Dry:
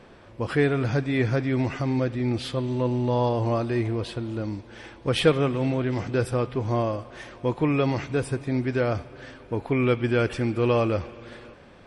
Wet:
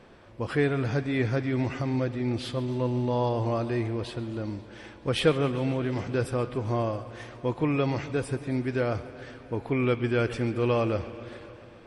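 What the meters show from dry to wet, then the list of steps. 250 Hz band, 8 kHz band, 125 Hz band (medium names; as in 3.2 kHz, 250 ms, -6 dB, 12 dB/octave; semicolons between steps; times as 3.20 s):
-3.0 dB, -3.0 dB, -3.0 dB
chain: modulated delay 136 ms, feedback 76%, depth 72 cents, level -18 dB; trim -3 dB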